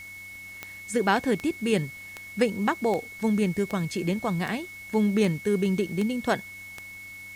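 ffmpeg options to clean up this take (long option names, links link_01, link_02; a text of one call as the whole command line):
ffmpeg -i in.wav -af "adeclick=threshold=4,bandreject=frequency=95.4:width_type=h:width=4,bandreject=frequency=190.8:width_type=h:width=4,bandreject=frequency=286.2:width_type=h:width=4,bandreject=frequency=2200:width=30,afwtdn=0.0025" out.wav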